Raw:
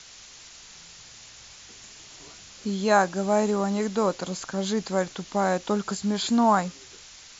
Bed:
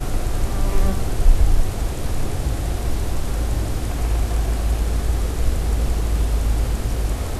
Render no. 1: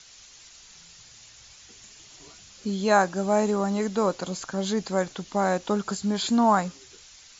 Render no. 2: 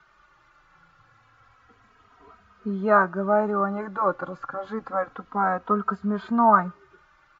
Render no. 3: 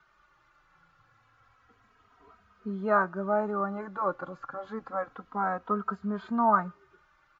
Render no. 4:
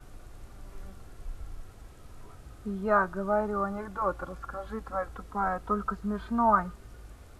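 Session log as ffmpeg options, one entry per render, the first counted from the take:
-af "afftdn=nr=6:nf=-48"
-filter_complex "[0:a]lowpass=f=1300:t=q:w=4.6,asplit=2[s0][s1];[s1]adelay=2.9,afreqshift=-0.29[s2];[s0][s2]amix=inputs=2:normalize=1"
-af "volume=0.501"
-filter_complex "[1:a]volume=0.0501[s0];[0:a][s0]amix=inputs=2:normalize=0"

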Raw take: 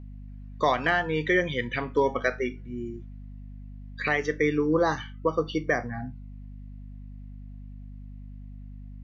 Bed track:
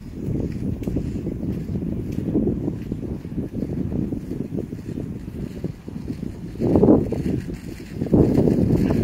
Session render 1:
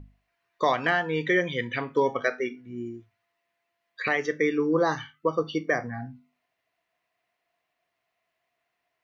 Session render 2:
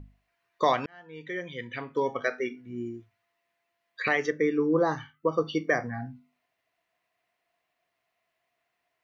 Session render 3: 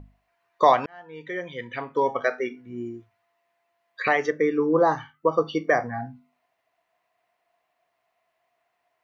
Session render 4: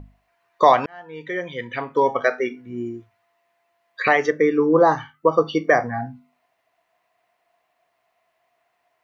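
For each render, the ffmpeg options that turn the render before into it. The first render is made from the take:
-af "bandreject=f=50:t=h:w=6,bandreject=f=100:t=h:w=6,bandreject=f=150:t=h:w=6,bandreject=f=200:t=h:w=6,bandreject=f=250:t=h:w=6"
-filter_complex "[0:a]asettb=1/sr,asplit=3[s0][s1][s2];[s0]atrim=end=4.304[s3];[s1]atrim=start=4.3:end=5.32,asetpts=PTS-STARTPTS,afade=t=in:d=0.004:c=qsin,afade=t=out:st=1.016:d=0.004:c=qsin,equalizer=f=4000:w=0.43:g=-8.5[s4];[s2]atrim=start=5.316[s5];[s3][s4]acrossfade=d=0.004:c1=hsin:c2=qsin[s6];[s6][s5]acrossfade=d=0.004:c1=qsin:c2=hsin,asplit=2[s7][s8];[s7]atrim=end=0.86,asetpts=PTS-STARTPTS,afade=t=out:st=0.856:d=0.004:c=hsin[s9];[s8]atrim=start=0.86,asetpts=PTS-STARTPTS,afade=t=in:d=1.89[s10];[s9][s10]concat=n=2:v=0:a=1"
-af "equalizer=f=810:t=o:w=1.5:g=8.5"
-af "volume=1.68,alimiter=limit=0.708:level=0:latency=1"

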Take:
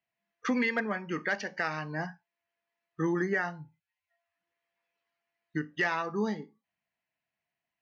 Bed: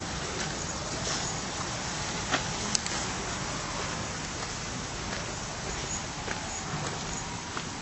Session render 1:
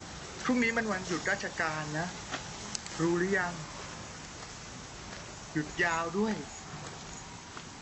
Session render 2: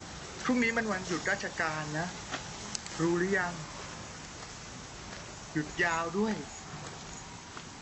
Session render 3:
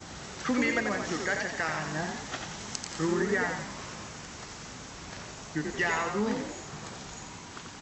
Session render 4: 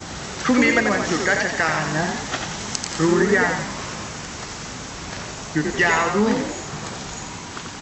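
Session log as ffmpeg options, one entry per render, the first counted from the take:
-filter_complex "[1:a]volume=0.335[s0];[0:a][s0]amix=inputs=2:normalize=0"
-af anull
-filter_complex "[0:a]asplit=7[s0][s1][s2][s3][s4][s5][s6];[s1]adelay=88,afreqshift=45,volume=0.562[s7];[s2]adelay=176,afreqshift=90,volume=0.26[s8];[s3]adelay=264,afreqshift=135,volume=0.119[s9];[s4]adelay=352,afreqshift=180,volume=0.055[s10];[s5]adelay=440,afreqshift=225,volume=0.0251[s11];[s6]adelay=528,afreqshift=270,volume=0.0116[s12];[s0][s7][s8][s9][s10][s11][s12]amix=inputs=7:normalize=0"
-af "volume=3.35,alimiter=limit=0.708:level=0:latency=1"

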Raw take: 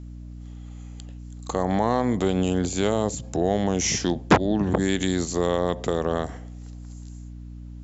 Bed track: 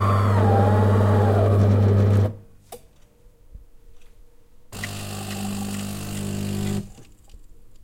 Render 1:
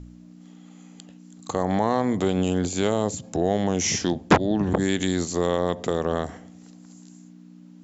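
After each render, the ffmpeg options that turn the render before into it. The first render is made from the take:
-af "bandreject=f=60:t=h:w=4,bandreject=f=120:t=h:w=4"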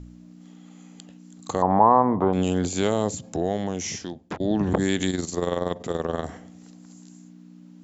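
-filter_complex "[0:a]asettb=1/sr,asplit=3[s0][s1][s2];[s0]atrim=end=1.624[s3];[s1]atrim=start=1.62:end=2.33,asetpts=PTS-STARTPTS,afade=t=in:d=0.004:c=qsin,afade=t=out:st=0.706:d=0.004:c=qsin,lowpass=f=990:t=q:w=4.5[s4];[s2]atrim=start=2.326[s5];[s3][s4]acrossfade=d=0.004:c1=hsin:c2=qsin[s6];[s6][s5]acrossfade=d=0.004:c1=qsin:c2=hsin,asettb=1/sr,asplit=3[s7][s8][s9];[s7]atrim=end=5.104[s10];[s8]atrim=start=5.1:end=6.25,asetpts=PTS-STARTPTS,afade=t=in:d=0.004:c=qsin,afade=t=out:st=1.146:d=0.004:c=qsin,tremolo=f=21:d=0.621[s11];[s9]atrim=start=6.246[s12];[s10][s11]acrossfade=d=0.004:c1=hsin:c2=qsin[s13];[s13][s12]acrossfade=d=0.004:c1=qsin:c2=hsin,asplit=2[s14][s15];[s14]atrim=end=4.4,asetpts=PTS-STARTPTS,afade=t=out:st=3.07:d=1.33:silence=0.0891251[s16];[s15]atrim=start=4.4,asetpts=PTS-STARTPTS,afade=t=in:d=0.004:c=hsin:silence=0.0891251[s17];[s16][s17]concat=n=2:v=0:a=1"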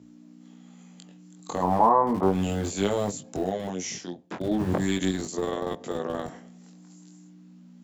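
-filter_complex "[0:a]acrossover=split=120|1400[s0][s1][s2];[s0]acrusher=bits=5:mix=0:aa=0.000001[s3];[s3][s1][s2]amix=inputs=3:normalize=0,flanger=delay=20:depth=2.7:speed=0.35"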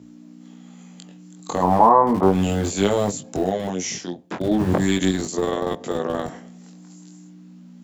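-af "volume=2,alimiter=limit=0.794:level=0:latency=1"

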